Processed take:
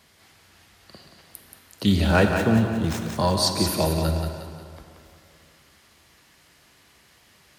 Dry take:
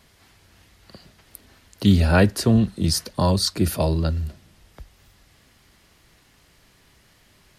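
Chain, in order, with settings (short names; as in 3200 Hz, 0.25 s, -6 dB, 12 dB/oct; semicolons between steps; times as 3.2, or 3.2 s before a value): 2.04–3.09 median filter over 9 samples; HPF 63 Hz; low shelf 360 Hz -5 dB; thinning echo 0.179 s, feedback 46%, high-pass 420 Hz, level -5.5 dB; plate-style reverb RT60 2.4 s, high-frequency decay 0.45×, pre-delay 0 ms, DRR 5.5 dB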